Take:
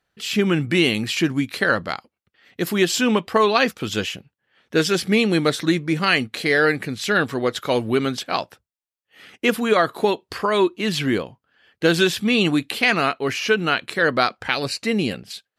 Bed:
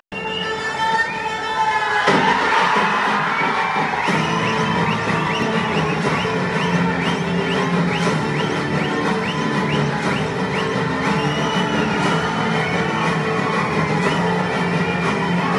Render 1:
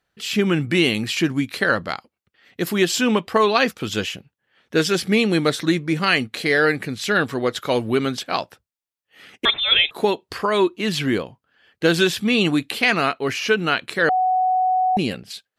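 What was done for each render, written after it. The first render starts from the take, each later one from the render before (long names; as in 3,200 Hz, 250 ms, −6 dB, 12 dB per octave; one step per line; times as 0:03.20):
0:09.45–0:09.91: voice inversion scrambler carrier 3,800 Hz
0:14.09–0:14.97: beep over 743 Hz −15.5 dBFS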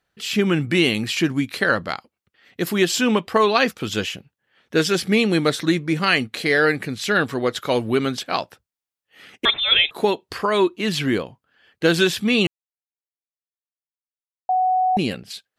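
0:12.47–0:14.49: silence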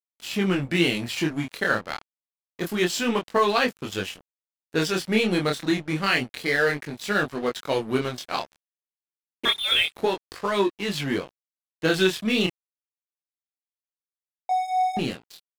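dead-zone distortion −32.5 dBFS
chorus effect 0.28 Hz, delay 20 ms, depth 7.7 ms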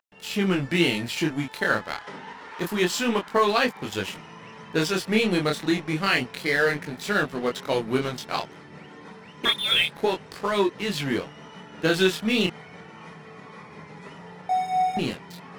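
mix in bed −24.5 dB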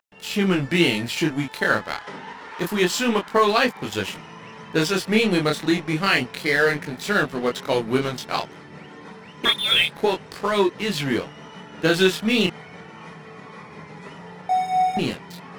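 level +3 dB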